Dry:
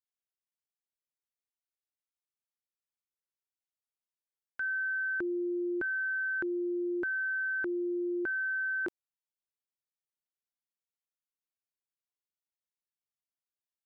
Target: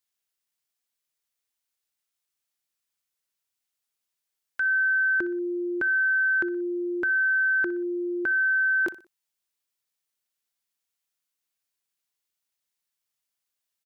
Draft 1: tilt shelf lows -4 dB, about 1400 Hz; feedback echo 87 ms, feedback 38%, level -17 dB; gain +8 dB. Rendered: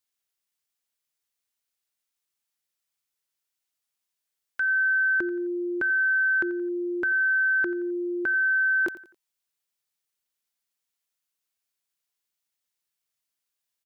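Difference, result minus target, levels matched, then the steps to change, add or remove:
echo 26 ms late
change: feedback echo 61 ms, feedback 38%, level -17 dB

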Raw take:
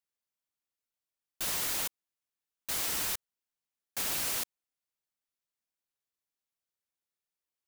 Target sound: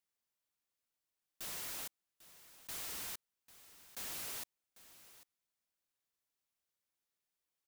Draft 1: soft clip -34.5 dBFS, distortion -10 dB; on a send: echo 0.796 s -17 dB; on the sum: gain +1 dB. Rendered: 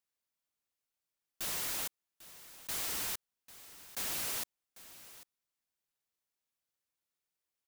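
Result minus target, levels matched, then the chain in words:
soft clip: distortion -5 dB
soft clip -43.5 dBFS, distortion -5 dB; on a send: echo 0.796 s -17 dB; on the sum: gain +1 dB

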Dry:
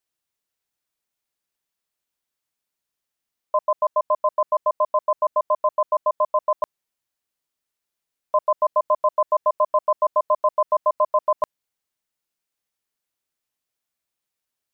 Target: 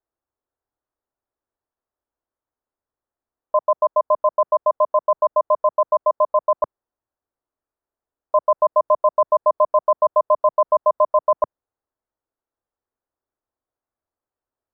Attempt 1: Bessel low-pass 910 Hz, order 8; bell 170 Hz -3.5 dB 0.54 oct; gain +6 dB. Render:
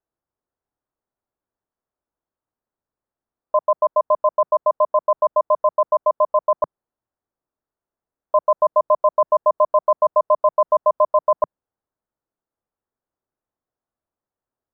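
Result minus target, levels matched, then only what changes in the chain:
125 Hz band +3.0 dB
change: bell 170 Hz -15 dB 0.54 oct

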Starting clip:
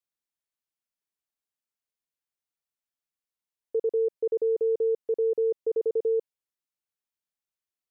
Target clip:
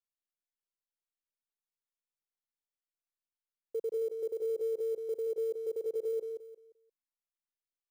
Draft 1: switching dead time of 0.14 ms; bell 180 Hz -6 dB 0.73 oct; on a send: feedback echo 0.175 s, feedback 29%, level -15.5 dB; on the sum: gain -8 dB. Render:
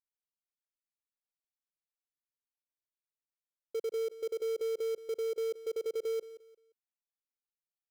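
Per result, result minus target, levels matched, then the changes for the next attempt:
switching dead time: distortion +14 dB; echo-to-direct -9.5 dB
change: switching dead time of 0.043 ms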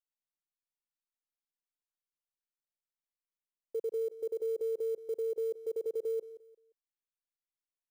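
echo-to-direct -9.5 dB
change: feedback echo 0.175 s, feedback 29%, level -6 dB

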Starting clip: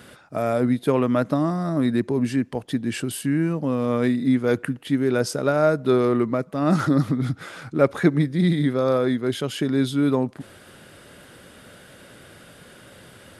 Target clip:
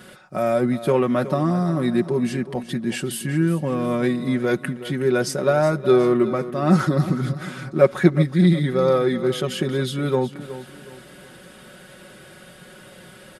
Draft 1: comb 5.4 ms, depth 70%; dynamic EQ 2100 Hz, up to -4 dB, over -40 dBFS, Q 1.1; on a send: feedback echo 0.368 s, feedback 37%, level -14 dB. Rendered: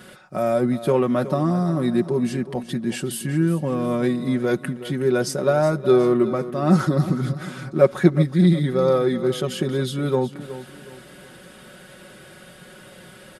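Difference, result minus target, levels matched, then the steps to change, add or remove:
2000 Hz band -2.5 dB
remove: dynamic EQ 2100 Hz, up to -4 dB, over -40 dBFS, Q 1.1

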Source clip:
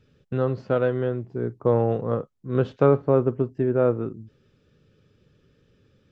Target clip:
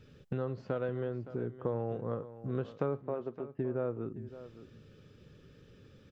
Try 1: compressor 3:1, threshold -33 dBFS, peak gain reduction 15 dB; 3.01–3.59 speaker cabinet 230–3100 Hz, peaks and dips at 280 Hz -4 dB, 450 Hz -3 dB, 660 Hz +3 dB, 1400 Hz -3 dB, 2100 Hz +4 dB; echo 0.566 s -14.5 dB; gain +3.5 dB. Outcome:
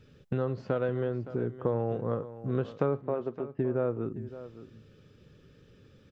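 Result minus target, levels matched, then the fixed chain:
compressor: peak gain reduction -5 dB
compressor 3:1, threshold -40.5 dBFS, peak gain reduction 20 dB; 3.01–3.59 speaker cabinet 230–3100 Hz, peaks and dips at 280 Hz -4 dB, 450 Hz -3 dB, 660 Hz +3 dB, 1400 Hz -3 dB, 2100 Hz +4 dB; echo 0.566 s -14.5 dB; gain +3.5 dB

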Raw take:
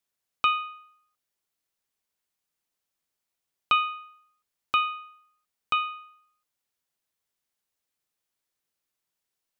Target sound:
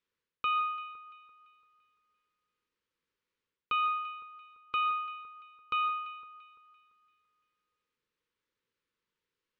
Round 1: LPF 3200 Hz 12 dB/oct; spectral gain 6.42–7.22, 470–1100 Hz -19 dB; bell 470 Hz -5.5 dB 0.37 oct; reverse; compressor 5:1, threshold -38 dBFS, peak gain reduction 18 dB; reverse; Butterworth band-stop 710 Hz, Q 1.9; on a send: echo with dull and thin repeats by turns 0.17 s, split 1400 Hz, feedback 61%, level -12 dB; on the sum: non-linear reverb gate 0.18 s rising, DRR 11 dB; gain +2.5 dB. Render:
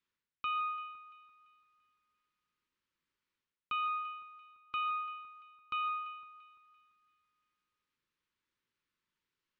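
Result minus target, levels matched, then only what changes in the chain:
500 Hz band -7.5 dB; compressor: peak gain reduction +5 dB
change: bell 470 Hz +6.5 dB 0.37 oct; change: compressor 5:1, threshold -31.5 dBFS, peak gain reduction 13 dB

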